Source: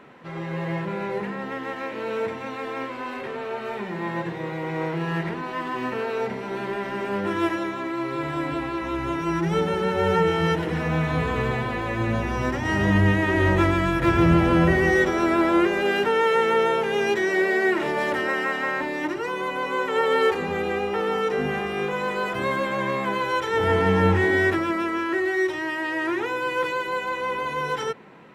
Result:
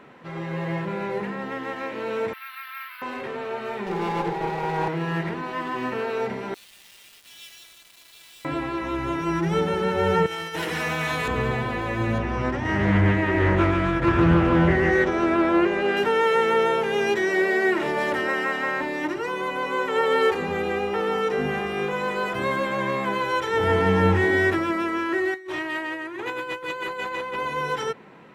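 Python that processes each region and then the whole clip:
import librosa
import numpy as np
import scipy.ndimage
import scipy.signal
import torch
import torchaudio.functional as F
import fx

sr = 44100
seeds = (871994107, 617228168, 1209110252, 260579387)

y = fx.chain(x, sr, fx.ellip_bandpass(low_hz=1300.0, high_hz=4800.0, order=3, stop_db=60),
    fx.resample_bad(factor=3, down='filtered', up='hold'), at=(2.33, 3.02))
y = fx.chain(y, sr, fx.lower_of_two(delay_ms=5.1),
    fx.small_body(hz=(440.0, 820.0), ring_ms=40, db=15), at=(3.86, 4.88))
y = fx.chain(y, sr, fx.cheby2_highpass(hz=980.0, order=4, stop_db=60),
    fx.quant_dither(seeds[0], bits=8, dither='none'), at=(6.54, 8.45))
y = fx.chain(y, sr, fx.tilt_eq(slope=3.5),
    fx.over_compress(threshold_db=-27.0, ratio=-0.5), at=(10.26, 11.28))
y = fx.chain(y, sr, fx.high_shelf(hz=4800.0, db=-11.0),
    fx.resample_bad(factor=2, down='none', up='filtered'),
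    fx.doppler_dist(depth_ms=0.34), at=(12.18, 15.97))
y = fx.chain(y, sr, fx.notch(hz=5400.0, q=8.2),
    fx.over_compress(threshold_db=-29.0, ratio=-0.5),
    fx.transformer_sat(knee_hz=1100.0), at=(25.34, 27.36))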